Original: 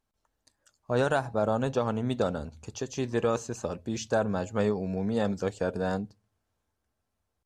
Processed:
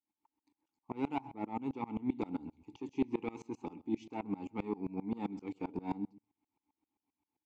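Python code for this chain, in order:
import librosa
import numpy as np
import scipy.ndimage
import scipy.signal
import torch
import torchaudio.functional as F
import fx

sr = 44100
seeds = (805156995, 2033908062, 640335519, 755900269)

p1 = fx.rider(x, sr, range_db=3, speed_s=0.5)
p2 = x + (p1 * 10.0 ** (1.5 / 20.0))
p3 = 10.0 ** (-15.5 / 20.0) * np.tanh(p2 / 10.0 ** (-15.5 / 20.0))
p4 = fx.vowel_filter(p3, sr, vowel='u')
p5 = p4 + 10.0 ** (-20.0 / 20.0) * np.pad(p4, (int(128 * sr / 1000.0), 0))[:len(p4)]
p6 = fx.tremolo_decay(p5, sr, direction='swelling', hz=7.6, depth_db=25)
y = p6 * 10.0 ** (7.5 / 20.0)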